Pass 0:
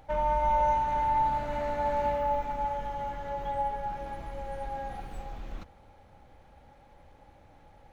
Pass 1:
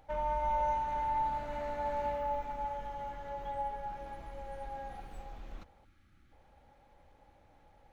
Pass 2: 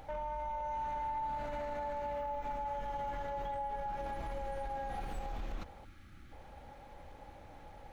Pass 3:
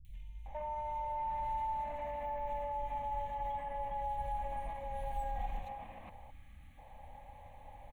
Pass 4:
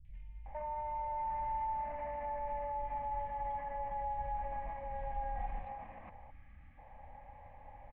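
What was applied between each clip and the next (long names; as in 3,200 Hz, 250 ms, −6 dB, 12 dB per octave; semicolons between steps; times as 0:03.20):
gain on a spectral selection 0:05.85–0:06.32, 380–1,100 Hz −18 dB; parametric band 130 Hz −3 dB 1.7 octaves; level −6 dB
downward compressor, threshold −41 dBFS, peak gain reduction 12.5 dB; brickwall limiter −41.5 dBFS, peak gain reduction 8.5 dB; level +10 dB
phaser with its sweep stopped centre 1,400 Hz, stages 6; three-band delay without the direct sound lows, highs, mids 50/460 ms, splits 160/2,900 Hz; level +1 dB
transistor ladder low-pass 2,400 Hz, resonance 30%; level +5.5 dB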